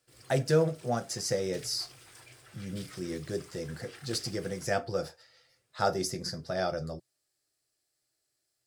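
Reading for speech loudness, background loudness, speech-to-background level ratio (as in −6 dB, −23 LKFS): −32.5 LKFS, −51.0 LKFS, 18.5 dB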